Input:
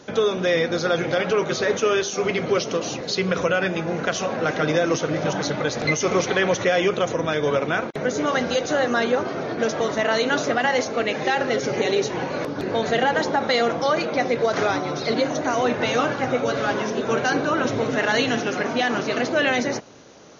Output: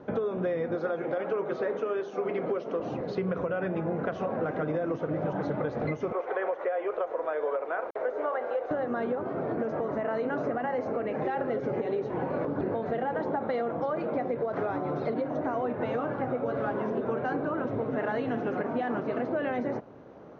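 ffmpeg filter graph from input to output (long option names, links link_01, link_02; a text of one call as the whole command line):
ffmpeg -i in.wav -filter_complex "[0:a]asettb=1/sr,asplit=3[link_01][link_02][link_03];[link_01]atrim=end=0.754[link_04];[link_02]atrim=start=0.75:end=2.8,asetpts=PTS-STARTPTS,afade=type=in:duration=0.004:curve=qsin,afade=type=out:start_time=2.046:duration=0.004:curve=qsin,highpass=240,bandreject=frequency=60:width_type=h:width=6,bandreject=frequency=120:width_type=h:width=6,bandreject=frequency=180:width_type=h:width=6,bandreject=frequency=240:width_type=h:width=6,bandreject=frequency=300:width_type=h:width=6,bandreject=frequency=360:width_type=h:width=6,bandreject=frequency=420:width_type=h:width=6[link_05];[link_03]atrim=start=2.796[link_06];[link_04][link_05]acrossfade=duration=0.004:curve1=hsin:curve2=qsin[link_07];[link_07][link_06]acrossfade=duration=0.004:curve1=qsin:curve2=hsin,asettb=1/sr,asplit=3[link_08][link_09][link_10];[link_08]atrim=end=6.124[link_11];[link_09]atrim=start=6.12:end=8.71,asetpts=PTS-STARTPTS,afade=type=in:duration=0.004:curve=qsin,afade=type=out:start_time=2.586:duration=0.004:curve=qsin,highpass=frequency=460:width=0.5412,highpass=frequency=460:width=1.3066,acrossover=split=2500[link_12][link_13];[link_13]acompressor=threshold=-45dB:ratio=4:attack=1:release=60[link_14];[link_12][link_14]amix=inputs=2:normalize=0,acrusher=bits=6:mix=0:aa=0.5[link_15];[link_10]atrim=start=8.706[link_16];[link_11][link_15]acrossfade=duration=0.004:curve1=hsin:curve2=qsin[link_17];[link_17][link_16]acrossfade=duration=0.004:curve1=qsin:curve2=hsin,asettb=1/sr,asplit=3[link_18][link_19][link_20];[link_18]atrim=end=9.554[link_21];[link_19]atrim=start=9.55:end=11.22,asetpts=PTS-STARTPTS,afade=type=in:duration=0.004:curve=qsin,afade=type=out:start_time=1.666:duration=0.004:curve=qsin,equalizer=frequency=3500:width_type=o:width=0.34:gain=-7.5,acompressor=threshold=-24dB:ratio=2:attack=3.2:release=140:knee=1:detection=peak[link_22];[link_20]atrim=start=11.216[link_23];[link_21][link_22]acrossfade=duration=0.004:curve1=hsin:curve2=qsin[link_24];[link_24][link_23]acrossfade=duration=0.004:curve1=qsin:curve2=hsin,lowpass=1100,alimiter=limit=-17dB:level=0:latency=1:release=496,acompressor=threshold=-26dB:ratio=6" out.wav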